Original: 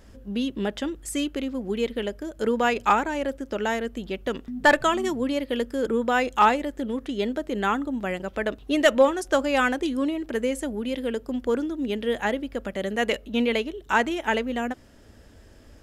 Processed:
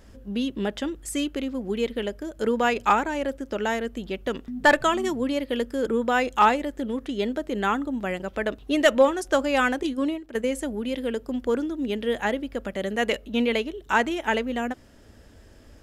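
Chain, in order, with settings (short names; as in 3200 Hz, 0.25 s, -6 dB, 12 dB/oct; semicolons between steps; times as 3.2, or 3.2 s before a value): 9.83–10.46 gate -27 dBFS, range -10 dB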